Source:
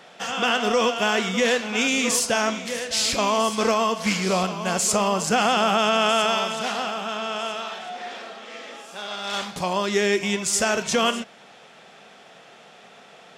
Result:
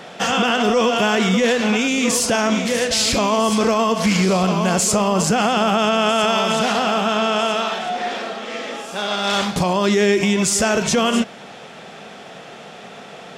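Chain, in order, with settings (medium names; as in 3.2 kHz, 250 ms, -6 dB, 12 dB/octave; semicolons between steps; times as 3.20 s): bass shelf 470 Hz +7 dB; peak limiter -17.5 dBFS, peak gain reduction 10.5 dB; trim +8.5 dB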